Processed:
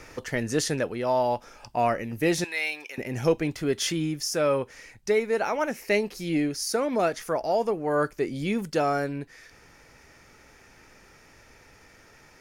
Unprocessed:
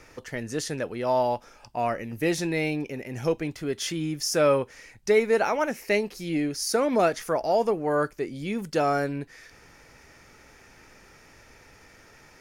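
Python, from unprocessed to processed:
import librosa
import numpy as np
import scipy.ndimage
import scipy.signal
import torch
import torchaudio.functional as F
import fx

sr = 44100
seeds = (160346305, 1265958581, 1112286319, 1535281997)

y = fx.highpass(x, sr, hz=1200.0, slope=12, at=(2.44, 2.98))
y = fx.rider(y, sr, range_db=5, speed_s=0.5)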